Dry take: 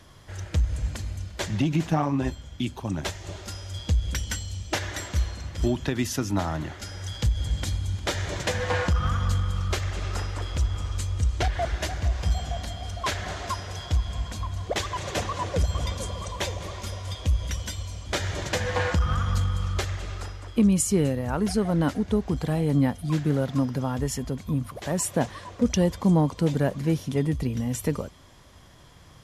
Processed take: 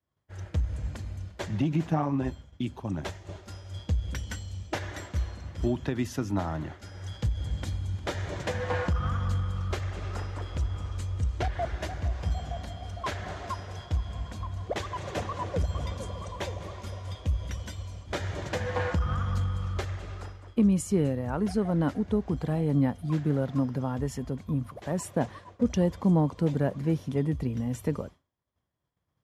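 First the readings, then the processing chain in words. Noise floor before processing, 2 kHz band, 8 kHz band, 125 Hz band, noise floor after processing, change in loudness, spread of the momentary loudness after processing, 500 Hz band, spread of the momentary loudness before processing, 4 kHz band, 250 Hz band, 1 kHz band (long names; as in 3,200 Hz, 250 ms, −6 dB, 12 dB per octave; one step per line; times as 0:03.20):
−47 dBFS, −6.0 dB, −11.5 dB, −3.0 dB, −58 dBFS, −3.5 dB, 11 LU, −3.0 dB, 10 LU, −9.5 dB, −2.5 dB, −4.0 dB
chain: high-pass filter 58 Hz
high-shelf EQ 2,500 Hz −10 dB
downward expander −36 dBFS
level −2.5 dB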